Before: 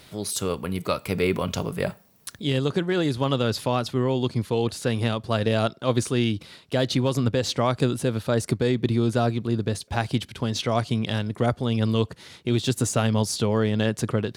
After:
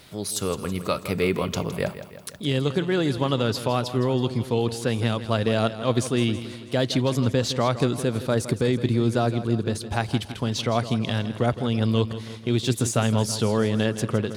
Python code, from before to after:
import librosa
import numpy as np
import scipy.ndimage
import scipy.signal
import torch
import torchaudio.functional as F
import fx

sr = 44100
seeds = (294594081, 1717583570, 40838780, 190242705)

y = fx.echo_feedback(x, sr, ms=163, feedback_pct=56, wet_db=-13.0)